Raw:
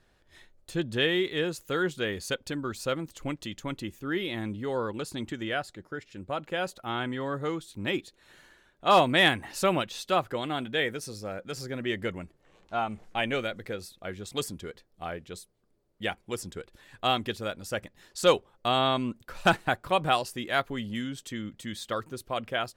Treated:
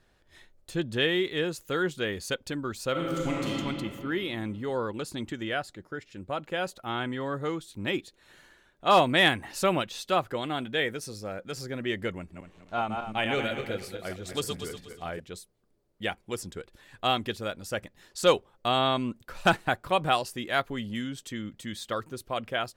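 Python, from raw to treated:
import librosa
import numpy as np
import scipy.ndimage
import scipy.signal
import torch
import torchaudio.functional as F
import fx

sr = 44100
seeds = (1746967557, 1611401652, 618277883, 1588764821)

y = fx.reverb_throw(x, sr, start_s=2.91, length_s=0.61, rt60_s=2.6, drr_db=-5.0)
y = fx.reverse_delay_fb(y, sr, ms=120, feedback_pct=53, wet_db=-4.5, at=(12.17, 15.2))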